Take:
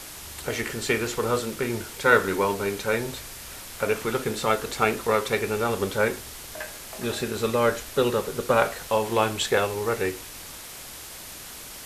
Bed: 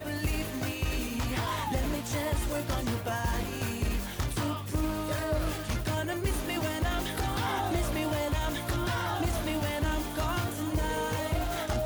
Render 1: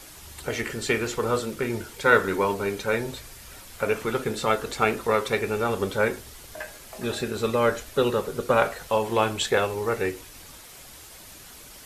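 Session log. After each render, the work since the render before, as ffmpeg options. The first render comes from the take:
ffmpeg -i in.wav -af "afftdn=noise_reduction=7:noise_floor=-41" out.wav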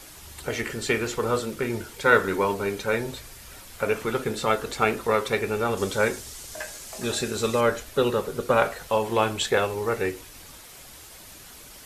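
ffmpeg -i in.wav -filter_complex "[0:a]asettb=1/sr,asplit=3[link_01][link_02][link_03];[link_01]atrim=end=5.774[link_04];[link_02]atrim=start=5.77:end=7.61,asetpts=PTS-STARTPTS,afade=type=in:duration=0.004:curve=qsin,afade=type=out:start_time=1.836:duration=0.004:curve=qsin,equalizer=frequency=6900:width=0.82:gain=9[link_05];[link_03]atrim=start=7.606[link_06];[link_04][link_05]acrossfade=duration=0.004:curve1=hsin:curve2=qsin[link_07];[link_07][link_06]acrossfade=duration=0.004:curve1=qsin:curve2=hsin" out.wav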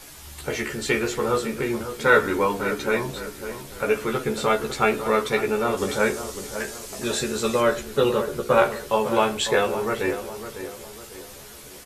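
ffmpeg -i in.wav -filter_complex "[0:a]asplit=2[link_01][link_02];[link_02]adelay=14,volume=-3dB[link_03];[link_01][link_03]amix=inputs=2:normalize=0,asplit=2[link_04][link_05];[link_05]adelay=552,lowpass=frequency=1700:poles=1,volume=-10dB,asplit=2[link_06][link_07];[link_07]adelay=552,lowpass=frequency=1700:poles=1,volume=0.44,asplit=2[link_08][link_09];[link_09]adelay=552,lowpass=frequency=1700:poles=1,volume=0.44,asplit=2[link_10][link_11];[link_11]adelay=552,lowpass=frequency=1700:poles=1,volume=0.44,asplit=2[link_12][link_13];[link_13]adelay=552,lowpass=frequency=1700:poles=1,volume=0.44[link_14];[link_04][link_06][link_08][link_10][link_12][link_14]amix=inputs=6:normalize=0" out.wav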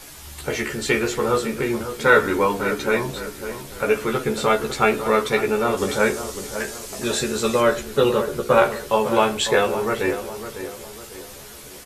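ffmpeg -i in.wav -af "volume=2.5dB,alimiter=limit=-2dB:level=0:latency=1" out.wav

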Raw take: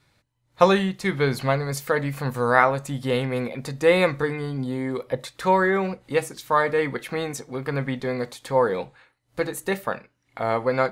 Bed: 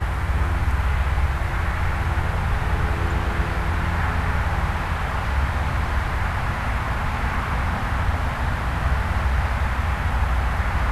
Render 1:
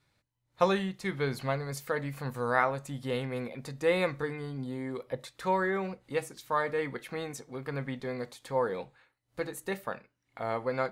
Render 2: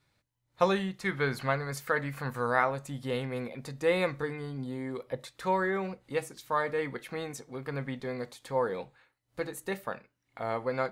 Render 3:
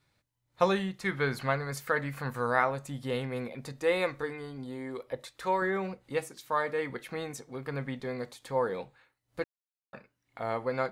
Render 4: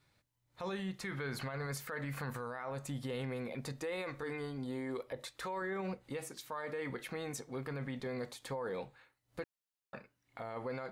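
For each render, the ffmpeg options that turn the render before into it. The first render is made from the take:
ffmpeg -i in.wav -af "volume=-9dB" out.wav
ffmpeg -i in.wav -filter_complex "[0:a]asettb=1/sr,asplit=3[link_01][link_02][link_03];[link_01]atrim=end=0.994[link_04];[link_02]atrim=start=0.99:end=2.47,asetpts=PTS-STARTPTS,afade=type=in:duration=0.004:curve=qsin,afade=type=out:start_time=1.476:duration=0.004:curve=qsin,equalizer=frequency=1500:width=1.3:gain=7[link_05];[link_03]atrim=start=2.466[link_06];[link_04][link_05]acrossfade=duration=0.004:curve1=hsin:curve2=qsin[link_07];[link_07][link_06]acrossfade=duration=0.004:curve1=qsin:curve2=hsin" out.wav
ffmpeg -i in.wav -filter_complex "[0:a]asettb=1/sr,asplit=3[link_01][link_02][link_03];[link_01]atrim=end=3.724[link_04];[link_02]atrim=start=3.72:end=5.62,asetpts=PTS-STARTPTS,afade=type=in:duration=0.004:curve=qsin,afade=type=out:start_time=1.896:duration=0.004:curve=qsin,equalizer=frequency=160:width=1.3:gain=-7.5[link_05];[link_03]atrim=start=5.616[link_06];[link_04][link_05]acrossfade=duration=0.004:curve1=hsin:curve2=qsin[link_07];[link_07][link_06]acrossfade=duration=0.004:curve1=qsin:curve2=hsin,asettb=1/sr,asplit=3[link_08][link_09][link_10];[link_08]atrim=end=6.214[link_11];[link_09]atrim=start=6.21:end=6.9,asetpts=PTS-STARTPTS,afade=type=in:duration=0.004:curve=qsin,afade=type=out:start_time=0.686:duration=0.004:curve=qsin,lowshelf=frequency=100:gain=-11[link_12];[link_10]atrim=start=6.896[link_13];[link_11][link_12]acrossfade=duration=0.004:curve1=hsin:curve2=qsin[link_14];[link_14][link_13]acrossfade=duration=0.004:curve1=qsin:curve2=hsin,asplit=3[link_15][link_16][link_17];[link_15]atrim=end=9.44,asetpts=PTS-STARTPTS,afade=type=out:start_time=9.436:duration=0.004:curve=hsin[link_18];[link_16]atrim=start=9.44:end=9.93,asetpts=PTS-STARTPTS,volume=0[link_19];[link_17]atrim=start=9.93,asetpts=PTS-STARTPTS,afade=type=in:duration=0.004:curve=hsin[link_20];[link_18][link_19][link_20]concat=n=3:v=0:a=1" out.wav
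ffmpeg -i in.wav -af "acompressor=threshold=-29dB:ratio=6,alimiter=level_in=7.5dB:limit=-24dB:level=0:latency=1:release=29,volume=-7.5dB" out.wav

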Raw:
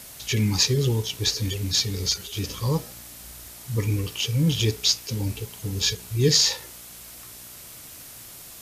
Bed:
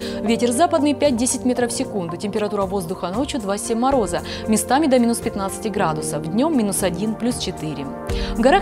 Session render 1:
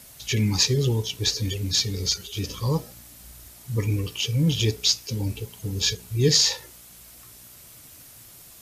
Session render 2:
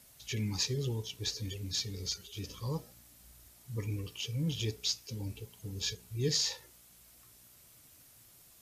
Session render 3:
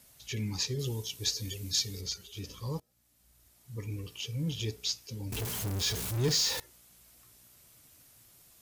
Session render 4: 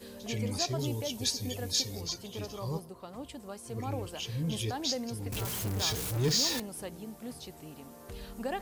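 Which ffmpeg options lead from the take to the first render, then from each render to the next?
ffmpeg -i in.wav -af "afftdn=noise_reduction=6:noise_floor=-43" out.wav
ffmpeg -i in.wav -af "volume=-12dB" out.wav
ffmpeg -i in.wav -filter_complex "[0:a]asettb=1/sr,asplit=3[link_01][link_02][link_03];[link_01]atrim=end=0.794[link_04];[link_02]atrim=start=0.79:end=2.01,asetpts=PTS-STARTPTS,afade=type=in:duration=0.004:curve=qsin,afade=type=out:start_time=1.216:duration=0.004:curve=qsin,highshelf=frequency=4400:gain=9.5[link_05];[link_03]atrim=start=2.006[link_06];[link_04][link_05]acrossfade=duration=0.004:curve1=hsin:curve2=qsin[link_07];[link_07][link_06]acrossfade=duration=0.004:curve1=qsin:curve2=hsin,asettb=1/sr,asplit=3[link_08][link_09][link_10];[link_08]atrim=end=5.324[link_11];[link_09]atrim=start=5.32:end=6.6,asetpts=PTS-STARTPTS,afade=type=in:duration=0.004:curve=qsin,afade=type=out:start_time=1.276:duration=0.004:curve=qsin,aeval=exprs='val(0)+0.5*0.0299*sgn(val(0))':channel_layout=same[link_12];[link_10]atrim=start=6.596[link_13];[link_11][link_12]acrossfade=duration=0.004:curve1=hsin:curve2=qsin[link_14];[link_14][link_13]acrossfade=duration=0.004:curve1=qsin:curve2=hsin,asplit=2[link_15][link_16];[link_15]atrim=end=2.8,asetpts=PTS-STARTPTS,afade=type=out:start_time=2.796:duration=0.004:curve=hsin:silence=0.0668344[link_17];[link_16]atrim=start=2.8,asetpts=PTS-STARTPTS,afade=type=in:duration=1.35:silence=0.0668344[link_18];[link_17][link_18]concat=n=2:v=0:a=1" out.wav
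ffmpeg -i in.wav -i bed.wav -filter_complex "[1:a]volume=-21dB[link_01];[0:a][link_01]amix=inputs=2:normalize=0" out.wav

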